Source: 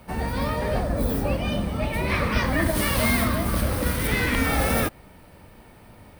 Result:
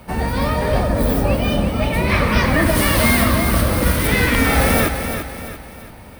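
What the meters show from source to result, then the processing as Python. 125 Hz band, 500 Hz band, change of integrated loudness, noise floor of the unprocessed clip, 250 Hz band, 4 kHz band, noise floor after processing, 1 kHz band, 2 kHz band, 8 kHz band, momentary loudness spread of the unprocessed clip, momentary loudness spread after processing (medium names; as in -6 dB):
+7.0 dB, +7.5 dB, +7.0 dB, -49 dBFS, +7.0 dB, +7.0 dB, -38 dBFS, +7.0 dB, +7.0 dB, +7.5 dB, 5 LU, 9 LU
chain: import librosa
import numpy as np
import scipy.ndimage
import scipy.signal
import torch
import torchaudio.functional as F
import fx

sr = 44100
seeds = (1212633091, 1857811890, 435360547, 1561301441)

y = fx.echo_feedback(x, sr, ms=340, feedback_pct=42, wet_db=-8.0)
y = y * librosa.db_to_amplitude(6.5)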